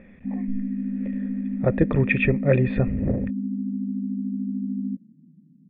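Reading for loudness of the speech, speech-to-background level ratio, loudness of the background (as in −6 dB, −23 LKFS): −23.5 LKFS, 5.5 dB, −29.0 LKFS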